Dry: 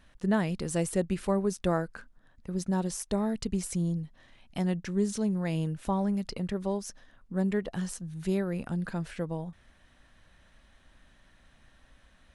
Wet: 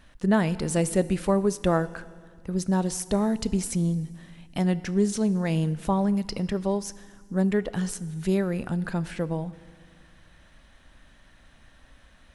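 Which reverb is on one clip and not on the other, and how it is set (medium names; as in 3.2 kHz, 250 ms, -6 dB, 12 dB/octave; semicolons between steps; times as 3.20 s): FDN reverb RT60 1.8 s, low-frequency decay 1.4×, high-frequency decay 1×, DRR 16 dB; trim +5 dB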